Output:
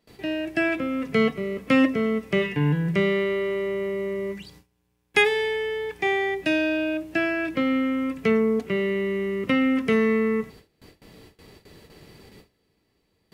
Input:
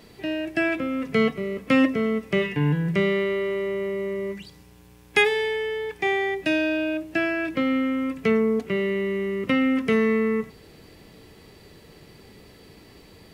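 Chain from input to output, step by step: gate with hold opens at -38 dBFS

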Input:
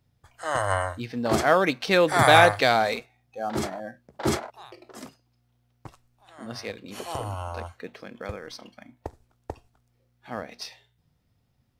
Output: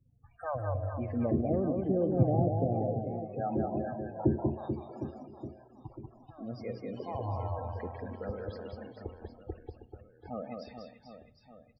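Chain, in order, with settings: low-pass that closes with the level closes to 350 Hz, closed at -21 dBFS; treble shelf 5.3 kHz +8.5 dB; in parallel at -2.5 dB: level held to a coarse grid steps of 23 dB; on the sum: loudest bins only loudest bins 16; tape spacing loss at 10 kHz 34 dB; reverse bouncing-ball echo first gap 190 ms, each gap 1.3×, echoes 5; on a send at -18 dB: reverberation RT60 1.1 s, pre-delay 47 ms; on the sum: trim -2.5 dB

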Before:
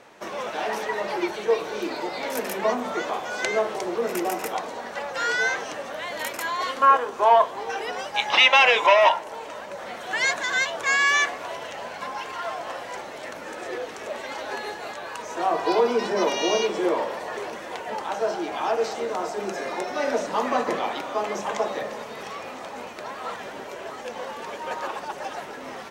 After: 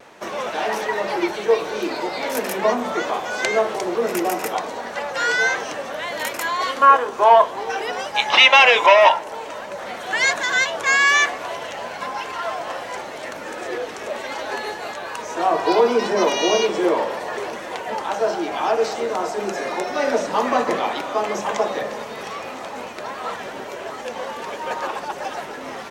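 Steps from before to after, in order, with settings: vibrato 0.63 Hz 19 cents; trim +4.5 dB

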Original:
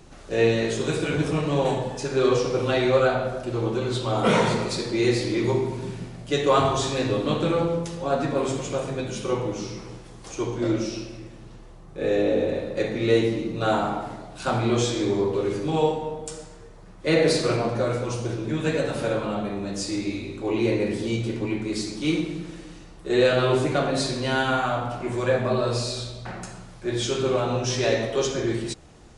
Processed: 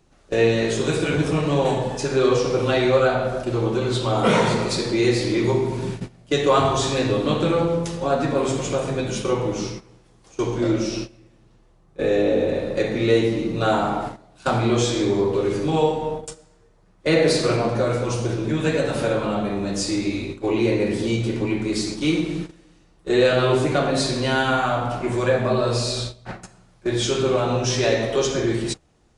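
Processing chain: gate -33 dBFS, range -17 dB; in parallel at 0 dB: compression, threshold -28 dBFS, peak gain reduction 13 dB

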